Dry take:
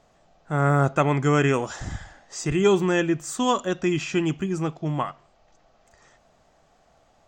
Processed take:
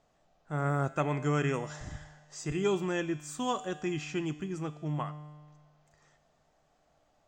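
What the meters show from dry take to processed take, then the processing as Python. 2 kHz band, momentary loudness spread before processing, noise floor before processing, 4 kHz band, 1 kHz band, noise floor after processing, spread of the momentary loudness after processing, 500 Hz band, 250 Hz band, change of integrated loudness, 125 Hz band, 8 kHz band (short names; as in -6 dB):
-10.0 dB, 12 LU, -61 dBFS, -9.5 dB, -9.5 dB, -70 dBFS, 14 LU, -10.0 dB, -9.5 dB, -9.5 dB, -8.5 dB, -9.5 dB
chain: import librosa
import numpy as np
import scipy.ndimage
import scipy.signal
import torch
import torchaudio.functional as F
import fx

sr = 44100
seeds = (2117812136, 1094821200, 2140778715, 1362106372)

y = fx.comb_fb(x, sr, f0_hz=150.0, decay_s=1.6, harmonics='all', damping=0.0, mix_pct=70)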